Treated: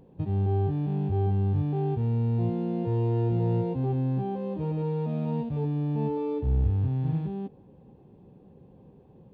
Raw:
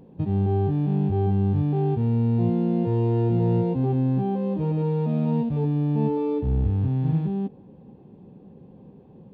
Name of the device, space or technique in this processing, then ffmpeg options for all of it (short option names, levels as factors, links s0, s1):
low shelf boost with a cut just above: -af "lowshelf=f=94:g=5,equalizer=f=210:t=o:w=0.98:g=-5.5,volume=0.668"